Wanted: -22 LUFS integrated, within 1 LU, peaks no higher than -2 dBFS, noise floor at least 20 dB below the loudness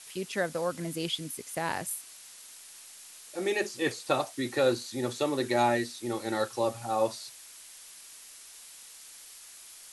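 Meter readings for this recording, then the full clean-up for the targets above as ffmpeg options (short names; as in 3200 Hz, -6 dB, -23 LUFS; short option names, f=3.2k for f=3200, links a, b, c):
noise floor -50 dBFS; noise floor target -51 dBFS; loudness -31.0 LUFS; peak -13.5 dBFS; loudness target -22.0 LUFS
-> -af "afftdn=nr=6:nf=-50"
-af "volume=9dB"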